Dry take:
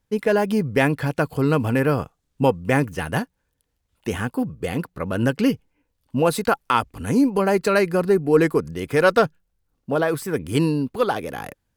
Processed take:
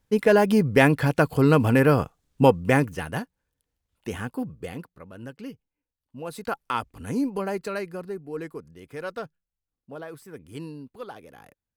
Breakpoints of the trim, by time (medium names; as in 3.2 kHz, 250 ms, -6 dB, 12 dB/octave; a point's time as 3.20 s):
2.60 s +1.5 dB
3.14 s -6.5 dB
4.56 s -6.5 dB
5.11 s -19 dB
6.17 s -19 dB
6.57 s -8 dB
7.33 s -8 dB
8.26 s -17.5 dB